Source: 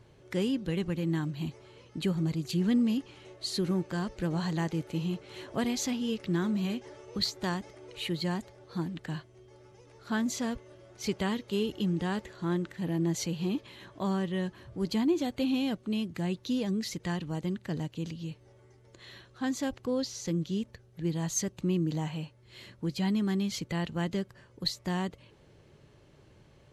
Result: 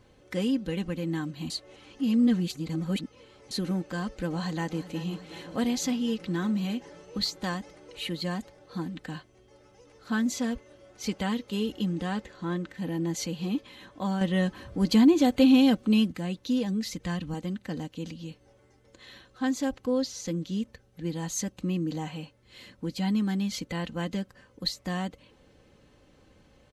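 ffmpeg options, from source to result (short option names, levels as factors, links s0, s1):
-filter_complex "[0:a]asplit=2[s0][s1];[s1]afade=t=in:st=4.32:d=0.01,afade=t=out:st=4.99:d=0.01,aecho=0:1:370|740|1110|1480|1850|2220|2590|2960|3330|3700|4070:0.188365|0.141274|0.105955|0.0794664|0.0595998|0.0446999|0.0335249|0.0251437|0.0188578|0.0141433|0.0106075[s2];[s0][s2]amix=inputs=2:normalize=0,asettb=1/sr,asplit=3[s3][s4][s5];[s3]atrim=end=12.124[s6];[s4]atrim=start=12.12:end=12.75,asetpts=PTS-STARTPTS,afade=t=in:d=0.004:c=qsin,afade=t=out:st=0.626:d=0.004:c=qsin,highshelf=f=10000:g=-10[s7];[s5]atrim=start=12.746[s8];[s6][s7]acrossfade=d=0.004:c1=hsin:c2=qsin[s9];[s9][s8]acrossfade=d=0.004:c1=qsin:c2=hsin,asettb=1/sr,asplit=3[s10][s11][s12];[s10]atrim=end=14.214[s13];[s11]atrim=start=14.21:end=16.12,asetpts=PTS-STARTPTS,afade=t=in:d=0.004:c=qsin,afade=t=out:st=1.906:d=0.004:c=qsin,acontrast=65[s14];[s12]atrim=start=16.116[s15];[s13][s14]acrossfade=d=0.004:c1=hsin:c2=qsin[s16];[s16][s15]acrossfade=d=0.004:c1=qsin:c2=hsin,asettb=1/sr,asplit=3[s17][s18][s19];[s17]atrim=end=16.704[s20];[s18]atrim=start=16.7:end=17.34,asetpts=PTS-STARTPTS,afade=t=in:d=0.004:c=qsin,afade=t=out:st=0.636:d=0.004:c=qsin,asubboost=boost=8.5:cutoff=210[s21];[s19]atrim=start=17.336[s22];[s20][s21]acrossfade=d=0.004:c1=hsin:c2=qsin[s23];[s23][s22]acrossfade=d=0.004:c1=qsin:c2=hsin,asplit=3[s24][s25][s26];[s24]atrim=end=1.502[s27];[s25]atrim=start=1.498:end=3.512,asetpts=PTS-STARTPTS,areverse[s28];[s26]atrim=start=3.508[s29];[s27][s28]acrossfade=d=0.004:c1=hsin:c2=hsin[s30];[s30][s29]acrossfade=d=0.004:c1=hsin:c2=hsin,aecho=1:1:3.9:0.58"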